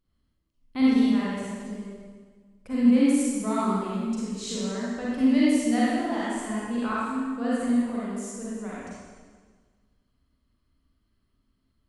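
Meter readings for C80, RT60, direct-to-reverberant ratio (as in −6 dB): −2.0 dB, 1.6 s, −8.0 dB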